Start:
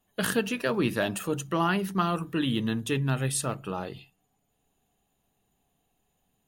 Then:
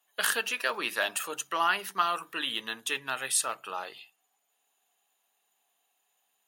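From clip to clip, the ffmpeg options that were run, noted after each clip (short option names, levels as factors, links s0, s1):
-af "highpass=930,volume=1.5"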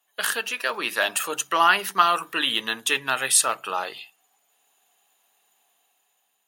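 -af "dynaudnorm=f=280:g=7:m=2.24,volume=1.26"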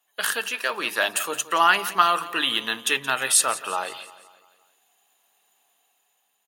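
-af "aecho=1:1:173|346|519|692|865:0.15|0.0778|0.0405|0.021|0.0109"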